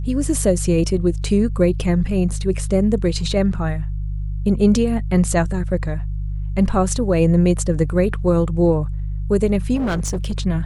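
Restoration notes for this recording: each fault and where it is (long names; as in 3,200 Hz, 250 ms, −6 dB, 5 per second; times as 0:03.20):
mains hum 50 Hz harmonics 3 −24 dBFS
0:09.75–0:10.33: clipping −17.5 dBFS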